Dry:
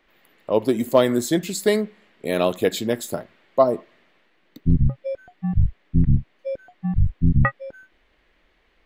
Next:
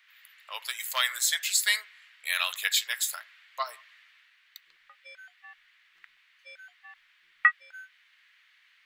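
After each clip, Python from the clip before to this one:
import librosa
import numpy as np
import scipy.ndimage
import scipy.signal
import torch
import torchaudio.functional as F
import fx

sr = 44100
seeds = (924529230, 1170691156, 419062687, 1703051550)

y = scipy.signal.sosfilt(scipy.signal.cheby2(4, 80, 250.0, 'highpass', fs=sr, output='sos'), x)
y = y * 10.0 ** (5.0 / 20.0)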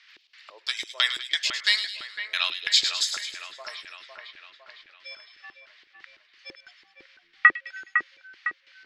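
y = fx.filter_lfo_lowpass(x, sr, shape='square', hz=3.0, low_hz=350.0, high_hz=5100.0, q=3.6)
y = fx.echo_split(y, sr, split_hz=2800.0, low_ms=506, high_ms=104, feedback_pct=52, wet_db=-7.5)
y = fx.rider(y, sr, range_db=4, speed_s=2.0)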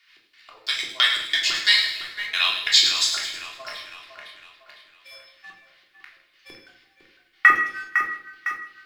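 y = fx.law_mismatch(x, sr, coded='A')
y = fx.echo_feedback(y, sr, ms=158, feedback_pct=33, wet_db=-18.0)
y = fx.room_shoebox(y, sr, seeds[0], volume_m3=690.0, walls='furnished', distance_m=3.3)
y = y * 10.0 ** (1.5 / 20.0)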